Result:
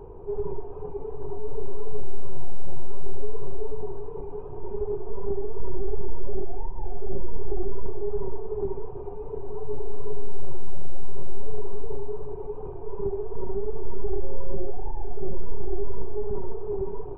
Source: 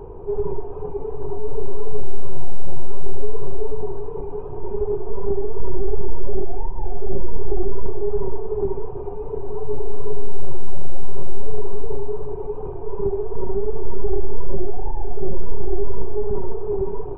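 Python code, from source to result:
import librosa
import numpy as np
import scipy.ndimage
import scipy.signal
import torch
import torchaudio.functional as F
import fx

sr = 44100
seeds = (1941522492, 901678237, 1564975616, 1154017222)

y = fx.air_absorb(x, sr, metres=310.0, at=(10.68, 11.3))
y = fx.dmg_tone(y, sr, hz=540.0, level_db=-34.0, at=(14.21, 14.71), fade=0.02)
y = y * 10.0 ** (-6.0 / 20.0)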